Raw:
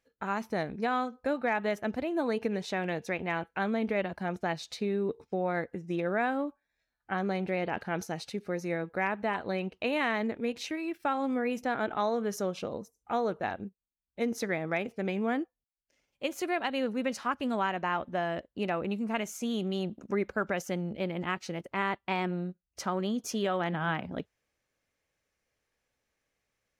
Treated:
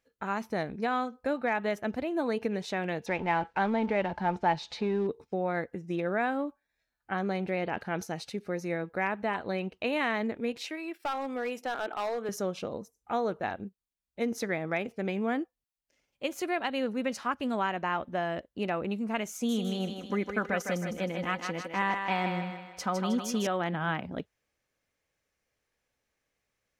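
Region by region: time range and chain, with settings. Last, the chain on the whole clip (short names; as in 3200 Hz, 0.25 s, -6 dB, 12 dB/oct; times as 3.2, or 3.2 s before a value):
3.06–5.07 G.711 law mismatch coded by mu + LPF 4400 Hz + bell 880 Hz +13 dB 0.23 oct
10.57–12.29 HPF 360 Hz + notch 6200 Hz, Q 16 + hard clip -27 dBFS
19.33–23.47 comb 4 ms, depth 46% + thinning echo 0.157 s, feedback 51%, high-pass 360 Hz, level -5 dB
whole clip: dry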